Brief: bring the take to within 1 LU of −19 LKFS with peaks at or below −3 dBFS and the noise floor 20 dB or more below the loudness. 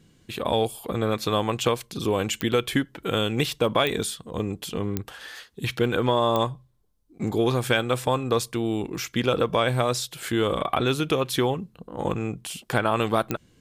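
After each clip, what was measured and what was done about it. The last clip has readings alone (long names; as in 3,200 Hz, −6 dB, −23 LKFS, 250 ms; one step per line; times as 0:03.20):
number of clicks 5; integrated loudness −25.5 LKFS; sample peak −8.0 dBFS; target loudness −19.0 LKFS
→ click removal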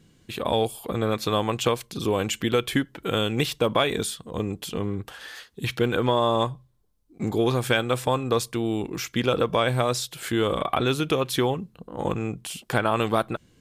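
number of clicks 0; integrated loudness −25.5 LKFS; sample peak −8.0 dBFS; target loudness −19.0 LKFS
→ level +6.5 dB
brickwall limiter −3 dBFS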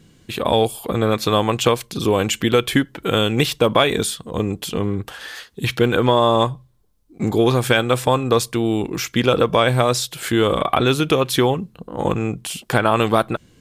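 integrated loudness −19.0 LKFS; sample peak −3.0 dBFS; background noise floor −54 dBFS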